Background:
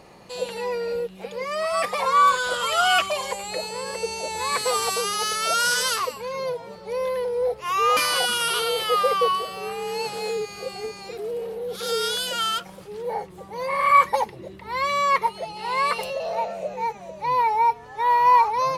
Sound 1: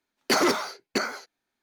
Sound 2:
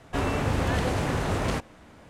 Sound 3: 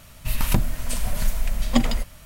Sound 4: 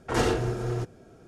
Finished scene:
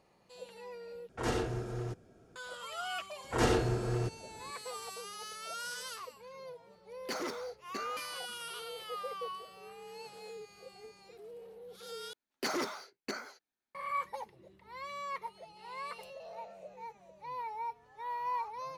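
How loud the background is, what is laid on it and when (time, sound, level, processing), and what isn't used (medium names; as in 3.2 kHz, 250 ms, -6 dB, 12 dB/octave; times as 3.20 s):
background -19.5 dB
1.09 s: replace with 4 -8.5 dB
3.24 s: add 4 -3.5 dB
6.79 s: add 1 -16.5 dB
12.13 s: replace with 1 -12.5 dB
not used: 2, 3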